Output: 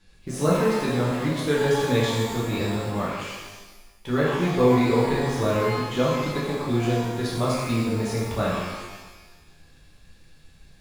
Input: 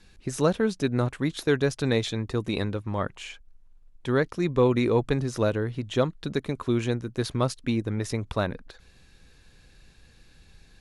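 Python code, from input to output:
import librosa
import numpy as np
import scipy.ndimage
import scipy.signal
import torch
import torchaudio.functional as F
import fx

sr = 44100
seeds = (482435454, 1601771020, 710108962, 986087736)

p1 = fx.quant_dither(x, sr, seeds[0], bits=6, dither='none')
p2 = x + (p1 * librosa.db_to_amplitude(-11.0))
p3 = fx.rev_shimmer(p2, sr, seeds[1], rt60_s=1.2, semitones=12, shimmer_db=-8, drr_db=-7.0)
y = p3 * librosa.db_to_amplitude(-7.5)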